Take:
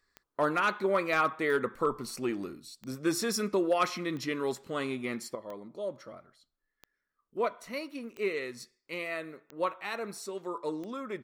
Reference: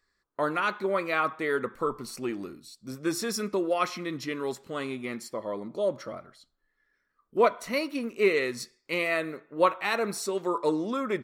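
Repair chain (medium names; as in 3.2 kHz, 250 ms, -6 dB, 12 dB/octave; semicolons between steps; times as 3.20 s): clip repair -18.5 dBFS; de-click; trim 0 dB, from 5.35 s +8.5 dB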